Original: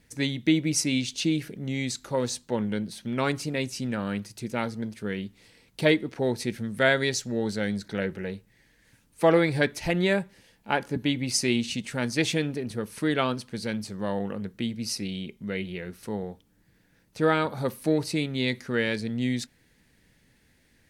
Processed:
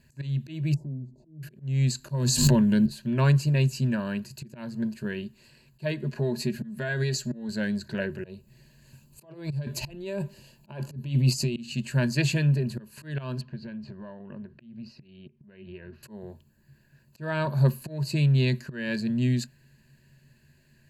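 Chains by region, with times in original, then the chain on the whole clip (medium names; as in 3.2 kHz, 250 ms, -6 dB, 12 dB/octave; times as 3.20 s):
0.74–1.43 s: elliptic low-pass 840 Hz + compression 2.5:1, threshold -42 dBFS
2.09–2.86 s: tone controls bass +6 dB, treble +8 dB + level flattener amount 100%
6.03–7.49 s: comb 4.8 ms, depth 56% + compression 10:1, threshold -25 dBFS
8.24–11.56 s: peaking EQ 1.7 kHz -10 dB 0.72 oct + compressor with a negative ratio -31 dBFS
13.41–16.03 s: compression 10:1, threshold -36 dBFS + distance through air 280 m
whole clip: rippled EQ curve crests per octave 1.4, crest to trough 13 dB; slow attack 285 ms; peaking EQ 140 Hz +13 dB 0.49 oct; trim -3 dB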